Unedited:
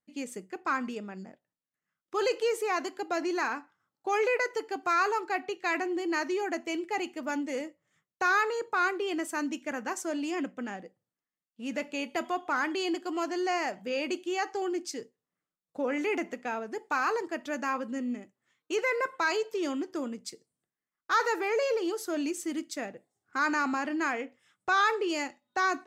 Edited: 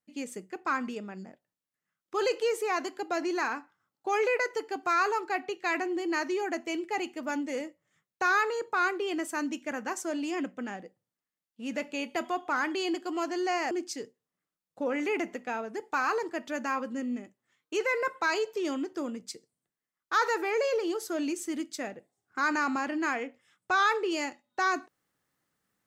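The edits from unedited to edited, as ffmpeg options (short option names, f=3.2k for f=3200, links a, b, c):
-filter_complex "[0:a]asplit=2[a][b];[a]atrim=end=13.712[c];[b]atrim=start=14.688[d];[c][d]acrossfade=d=0.004:c1=hsin:c2=hsin"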